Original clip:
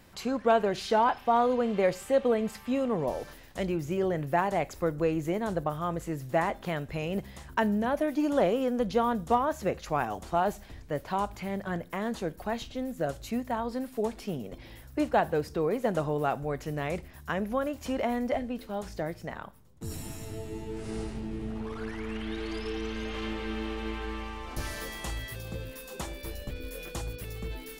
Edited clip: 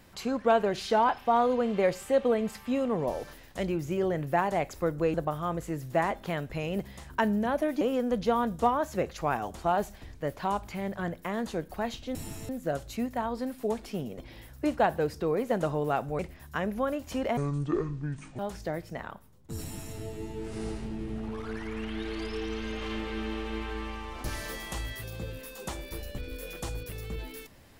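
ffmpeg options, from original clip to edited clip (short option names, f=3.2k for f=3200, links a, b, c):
-filter_complex "[0:a]asplit=8[a][b][c][d][e][f][g][h];[a]atrim=end=5.142[i];[b]atrim=start=5.528:end=8.202[j];[c]atrim=start=8.488:end=12.832[k];[d]atrim=start=19.938:end=20.282[l];[e]atrim=start=12.828:end=16.532[m];[f]atrim=start=16.928:end=18.114[n];[g]atrim=start=18.11:end=18.71,asetpts=PTS-STARTPTS,asetrate=26019,aresample=44100,atrim=end_sample=44847,asetpts=PTS-STARTPTS[o];[h]atrim=start=18.706[p];[i][j]acrossfade=d=0.004:c1=hsin:c2=hsin[q];[q][k]acrossfade=d=0.004:c1=hsin:c2=hsin[r];[r][l]acrossfade=d=0.004:c1=hsin:c2=hsin[s];[s][m]acrossfade=d=0.004:c1=hsin:c2=hsin[t];[t][n]acrossfade=d=0.004:c1=hsin:c2=hsin[u];[u][o]acrossfade=d=0.004:c1=hsin:c2=hsin[v];[v][p]acrossfade=d=0.004:c1=hsin:c2=hsin"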